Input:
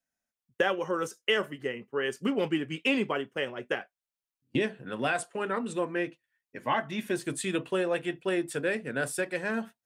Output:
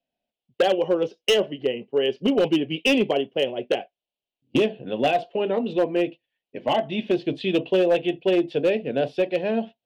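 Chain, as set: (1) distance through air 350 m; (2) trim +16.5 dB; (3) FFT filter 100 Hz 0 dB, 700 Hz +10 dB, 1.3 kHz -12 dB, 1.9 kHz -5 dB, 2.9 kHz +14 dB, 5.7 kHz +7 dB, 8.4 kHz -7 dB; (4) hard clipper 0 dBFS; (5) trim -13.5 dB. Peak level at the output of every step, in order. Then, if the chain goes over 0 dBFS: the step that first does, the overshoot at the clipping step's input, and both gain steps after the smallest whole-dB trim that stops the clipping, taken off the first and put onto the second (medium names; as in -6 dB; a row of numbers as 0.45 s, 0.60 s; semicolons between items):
-14.5 dBFS, +2.0 dBFS, +9.0 dBFS, 0.0 dBFS, -13.5 dBFS; step 2, 9.0 dB; step 2 +7.5 dB, step 5 -4.5 dB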